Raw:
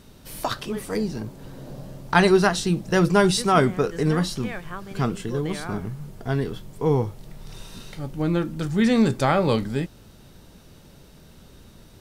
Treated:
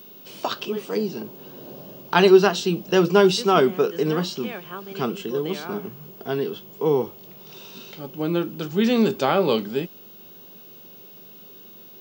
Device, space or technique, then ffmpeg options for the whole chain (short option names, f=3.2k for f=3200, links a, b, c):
old television with a line whistle: -af "highpass=f=180:w=0.5412,highpass=f=180:w=1.3066,equalizer=f=280:t=q:w=4:g=-3,equalizer=f=390:t=q:w=4:g=6,equalizer=f=1.9k:t=q:w=4:g=-7,equalizer=f=2.9k:t=q:w=4:g=8,lowpass=f=6.8k:w=0.5412,lowpass=f=6.8k:w=1.3066,aeval=exprs='val(0)+0.00708*sin(2*PI*15625*n/s)':c=same"